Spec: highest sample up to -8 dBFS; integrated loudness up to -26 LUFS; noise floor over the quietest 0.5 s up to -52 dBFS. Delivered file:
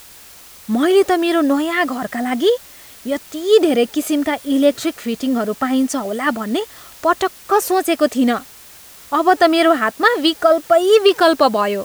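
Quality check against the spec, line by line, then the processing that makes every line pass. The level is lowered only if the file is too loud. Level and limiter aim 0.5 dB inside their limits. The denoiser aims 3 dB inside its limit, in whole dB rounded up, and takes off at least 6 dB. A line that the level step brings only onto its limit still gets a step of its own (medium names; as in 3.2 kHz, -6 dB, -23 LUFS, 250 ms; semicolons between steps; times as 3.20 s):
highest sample -1.5 dBFS: fail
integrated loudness -16.5 LUFS: fail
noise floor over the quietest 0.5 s -41 dBFS: fail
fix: noise reduction 6 dB, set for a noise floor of -41 dBFS; trim -10 dB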